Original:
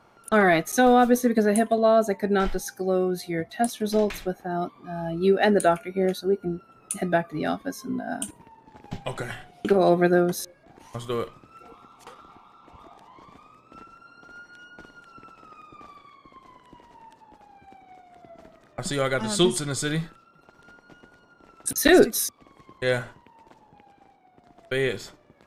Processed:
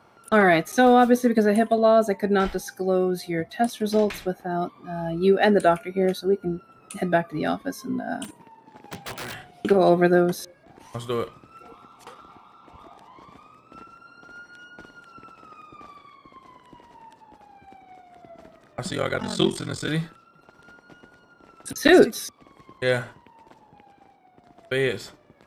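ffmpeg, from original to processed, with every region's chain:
ffmpeg -i in.wav -filter_complex "[0:a]asettb=1/sr,asplit=3[link_01][link_02][link_03];[link_01]atrim=end=8.244[link_04];[link_02]atrim=start=8.24:end=9.35,asetpts=PTS-STARTPTS,afade=type=in:duration=0.004:curve=qsin,afade=type=out:start_time=1.106:duration=0.004:curve=qsin,highpass=140,aeval=exprs='(mod(26.6*val(0)+1,2)-1)/26.6':channel_layout=same[link_05];[link_03]atrim=start=9.346[link_06];[link_04][link_05]acrossfade=duration=0.004:curve1=hsin:curve2=qsin[link_07];[link_07][link_06]acrossfade=duration=0.004:curve1=qsin:curve2=hsin,asettb=1/sr,asplit=3[link_08][link_09][link_10];[link_08]atrim=end=18.894[link_11];[link_09]atrim=start=18.89:end=19.88,asetpts=PTS-STARTPTS,afade=type=in:duration=0.004:curve=qsin,afade=type=out:start_time=0.986:duration=0.004:curve=qsin,equalizer=frequency=10000:width=5.9:gain=-12,aeval=exprs='val(0)*sin(2*PI*22*n/s)':channel_layout=same[link_12];[link_10]atrim=start=19.876[link_13];[link_11][link_12]acrossfade=duration=0.004:curve1=hsin:curve2=qsin[link_14];[link_14][link_13]acrossfade=duration=0.004:curve1=qsin:curve2=hsin,bandreject=frequency=6700:width=18,acrossover=split=5000[link_15][link_16];[link_16]acompressor=threshold=-37dB:ratio=4:attack=1:release=60[link_17];[link_15][link_17]amix=inputs=2:normalize=0,highpass=44,volume=1.5dB" out.wav

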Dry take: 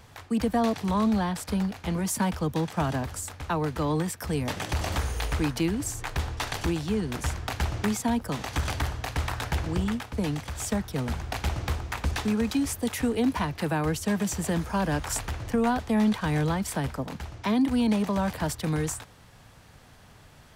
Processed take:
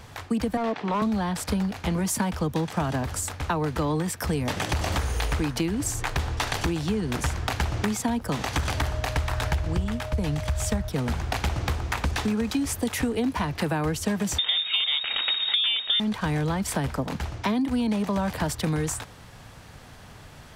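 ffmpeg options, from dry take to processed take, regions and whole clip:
ffmpeg -i in.wav -filter_complex "[0:a]asettb=1/sr,asplit=3[link_01][link_02][link_03];[link_01]atrim=end=0.574[link_04];[link_02]atrim=start=0.57:end=1.02,asetpts=PTS-STARTPTS,afade=type=in:duration=0.004:curve=qsin,afade=type=out:start_time=0.446:duration=0.004:curve=qsin,highpass=280,lowpass=2800,volume=24dB,asoftclip=hard,volume=-24dB[link_05];[link_03]atrim=start=1.016[link_06];[link_04][link_05]acrossfade=duration=0.004:curve1=hsin:curve2=qsin[link_07];[link_07][link_06]acrossfade=duration=0.004:curve1=qsin:curve2=hsin,asettb=1/sr,asplit=3[link_08][link_09][link_10];[link_08]atrim=end=8.774[link_11];[link_09]atrim=start=8.77:end=10.89,asetpts=PTS-STARTPTS,afade=type=in:duration=0.004:curve=qsin,afade=type=out:start_time=2.116:duration=0.004:curve=qsin,asubboost=boost=7:cutoff=120,aeval=exprs='val(0)+0.01*sin(2*PI*620*n/s)':channel_layout=same[link_12];[link_10]atrim=start=10.886[link_13];[link_11][link_12]acrossfade=duration=0.004:curve1=hsin:curve2=qsin[link_14];[link_14][link_13]acrossfade=duration=0.004:curve1=qsin:curve2=hsin,asettb=1/sr,asplit=3[link_15][link_16][link_17];[link_15]atrim=end=14.384[link_18];[link_16]atrim=start=14.38:end=16,asetpts=PTS-STARTPTS,afade=type=in:duration=0.004:curve=qsin,afade=type=out:start_time=1.616:duration=0.004:curve=qsin,lowpass=frequency=3200:width_type=q:width=0.5098,lowpass=frequency=3200:width_type=q:width=0.6013,lowpass=frequency=3200:width_type=q:width=0.9,lowpass=frequency=3200:width_type=q:width=2.563,afreqshift=-3800,acontrast=44[link_19];[link_17]atrim=start=15.996[link_20];[link_18][link_19]acrossfade=duration=0.004:curve1=hsin:curve2=qsin[link_21];[link_21][link_20]acrossfade=duration=0.004:curve1=qsin:curve2=hsin,highshelf=frequency=11000:gain=-3.5,acompressor=threshold=-29dB:ratio=6,volume=6.5dB" out.wav

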